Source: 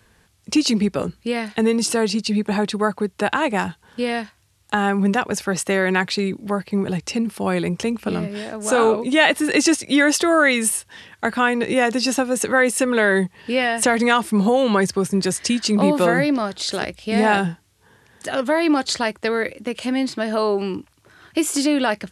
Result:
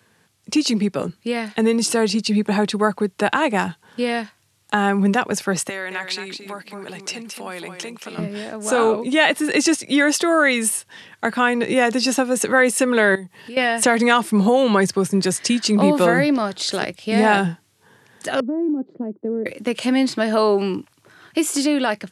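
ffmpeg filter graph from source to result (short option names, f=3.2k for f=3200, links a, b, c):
-filter_complex "[0:a]asettb=1/sr,asplit=3[a][b][c];[a]atrim=end=5.694[d];[b]atrim=start=5.69:end=8.18,asetpts=PTS-STARTPTS,afade=t=in:d=0.004:c=qsin,afade=t=out:st=2.486:d=0.004:c=qsin,acompressor=threshold=-22dB:ratio=2.5:attack=3.2:release=140:knee=1:detection=peak,highpass=f=1k:p=1,aecho=1:1:221:0.422,atrim=end_sample=109809[e];[c]atrim=start=8.176[f];[d][e]acrossfade=d=0.004:c1=hsin:c2=qsin[g];[g][f]acrossfade=d=0.004:c1=qsin:c2=hsin,asettb=1/sr,asplit=3[h][i][j];[h]atrim=end=13.154[k];[i]atrim=start=13.15:end=13.57,asetpts=PTS-STARTPTS,afade=t=in:d=0.004:c=qsin,afade=t=out:st=0.416:d=0.004:c=qsin,bandreject=f=2.4k:w=28,acompressor=threshold=-37dB:ratio=3:attack=3.2:release=140:knee=1:detection=peak,highshelf=f=10k:g=10.5[l];[j]atrim=start=13.566[m];[k][l]acrossfade=d=0.004:c1=hsin:c2=qsin[n];[n][m]acrossfade=d=0.004:c1=qsin:c2=hsin,asettb=1/sr,asplit=3[o][p][q];[o]atrim=end=18.404[r];[p]atrim=start=18.4:end=19.46,asetpts=PTS-STARTPTS,afade=t=in:d=0.004:c=qsin,afade=t=out:st=1.056:d=0.004:c=qsin,asuperpass=centerf=280:order=4:qfactor=1.3,acompressor=threshold=-20dB:ratio=6:attack=3.2:release=140:knee=1:detection=peak[s];[q]atrim=start=19.456[t];[r][s]acrossfade=d=0.004:c1=hsin:c2=qsin[u];[u][t]acrossfade=d=0.004:c1=qsin:c2=hsin,highpass=f=110:w=0.5412,highpass=f=110:w=1.3066,dynaudnorm=f=790:g=5:m=11.5dB,volume=-1dB"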